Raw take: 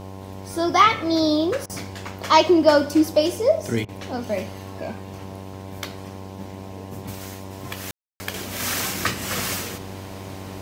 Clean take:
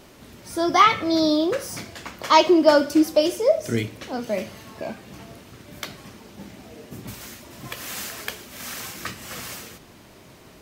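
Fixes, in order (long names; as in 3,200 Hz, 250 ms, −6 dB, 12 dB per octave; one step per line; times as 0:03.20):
hum removal 95.9 Hz, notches 11
ambience match 0:07.91–0:08.20
repair the gap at 0:01.66/0:03.85, 35 ms
level correction −8.5 dB, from 0:08.34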